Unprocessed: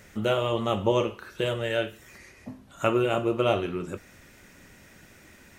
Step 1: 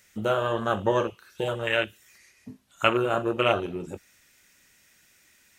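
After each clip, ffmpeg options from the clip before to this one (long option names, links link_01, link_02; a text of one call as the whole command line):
ffmpeg -i in.wav -af "afwtdn=0.0316,tiltshelf=frequency=1500:gain=-9,volume=6.5dB" out.wav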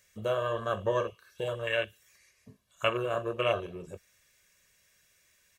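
ffmpeg -i in.wav -af "aecho=1:1:1.8:0.66,volume=-7.5dB" out.wav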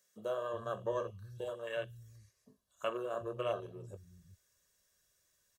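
ffmpeg -i in.wav -filter_complex "[0:a]equalizer=frequency=2300:width_type=o:width=0.7:gain=-13.5,acrossover=split=160[link_01][link_02];[link_01]adelay=370[link_03];[link_03][link_02]amix=inputs=2:normalize=0,volume=-6.5dB" out.wav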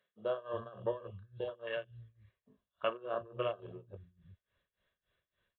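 ffmpeg -i in.wav -af "tremolo=f=3.5:d=0.9,aresample=8000,aresample=44100,volume=3dB" out.wav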